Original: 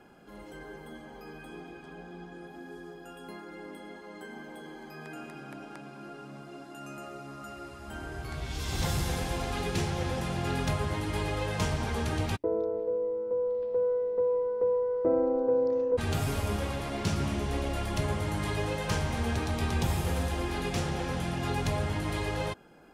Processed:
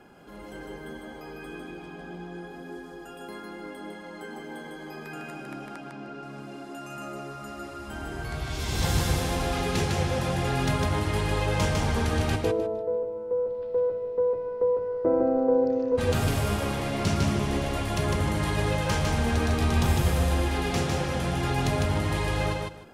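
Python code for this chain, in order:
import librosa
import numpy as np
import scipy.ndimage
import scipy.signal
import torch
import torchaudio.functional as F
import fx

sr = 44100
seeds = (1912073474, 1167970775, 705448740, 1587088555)

y = fx.air_absorb(x, sr, metres=85.0, at=(5.77, 6.23))
y = fx.echo_feedback(y, sr, ms=153, feedback_pct=19, wet_db=-3.0)
y = y * 10.0 ** (3.0 / 20.0)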